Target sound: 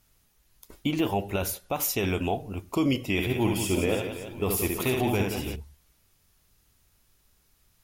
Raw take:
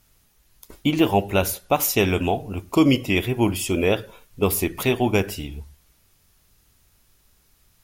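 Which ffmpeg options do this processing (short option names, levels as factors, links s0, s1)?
-filter_complex "[0:a]alimiter=limit=0.266:level=0:latency=1:release=14,asettb=1/sr,asplit=3[s0][s1][s2];[s0]atrim=end=3.124[s3];[s1]atrim=start=3.12:end=5.56,asetpts=PTS-STARTPTS,afade=t=in:d=0.004:c=qsin,afade=t=out:st=2.436:d=0.004:c=qsin,aecho=1:1:70|175|332.5|568.8|923.1:0.631|0.398|0.251|0.158|0.1,atrim=end_sample=107604[s4];[s2]atrim=start=5.556[s5];[s3][s4]acrossfade=d=0.004:c1=hsin:c2=qsin[s6];[s6][s5]acrossfade=d=0.004:c1=qsin:c2=hsin,volume=0.562"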